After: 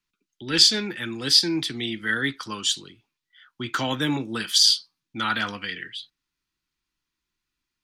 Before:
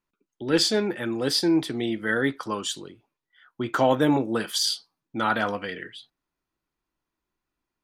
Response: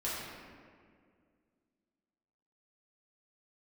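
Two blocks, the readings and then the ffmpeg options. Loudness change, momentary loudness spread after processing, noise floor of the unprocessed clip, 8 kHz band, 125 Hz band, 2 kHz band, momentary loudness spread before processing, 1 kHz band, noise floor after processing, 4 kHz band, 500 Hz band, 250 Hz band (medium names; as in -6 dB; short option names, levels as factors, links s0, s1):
+3.0 dB, 17 LU, under -85 dBFS, +5.5 dB, -1.0 dB, +2.0 dB, 13 LU, -4.0 dB, -84 dBFS, +8.0 dB, -8.5 dB, -4.0 dB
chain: -filter_complex "[0:a]equalizer=f=600:t=o:w=1.5:g=-12,acrossover=split=280|650|5500[s0][s1][s2][s3];[s2]crystalizer=i=5:c=0[s4];[s0][s1][s4][s3]amix=inputs=4:normalize=0"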